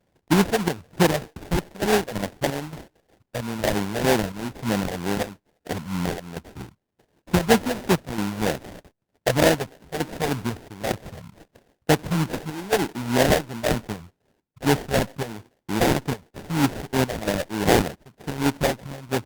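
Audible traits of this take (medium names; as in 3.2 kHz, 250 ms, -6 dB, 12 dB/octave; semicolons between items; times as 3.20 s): phasing stages 4, 3.2 Hz, lowest notch 290–1700 Hz; aliases and images of a low sample rate 1.2 kHz, jitter 20%; chopped level 1.1 Hz, depth 65%, duty 75%; Opus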